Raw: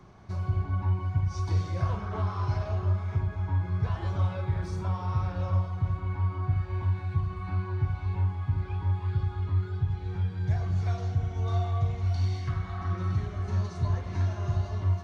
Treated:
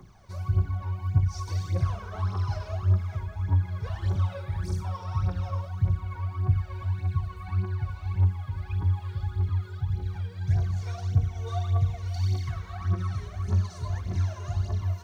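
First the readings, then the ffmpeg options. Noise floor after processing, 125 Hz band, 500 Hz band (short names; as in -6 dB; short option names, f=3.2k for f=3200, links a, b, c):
-43 dBFS, +1.0 dB, -2.5 dB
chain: -af "aemphasis=mode=production:type=50fm,aphaser=in_gain=1:out_gain=1:delay=2.2:decay=0.71:speed=1.7:type=triangular,volume=-5dB"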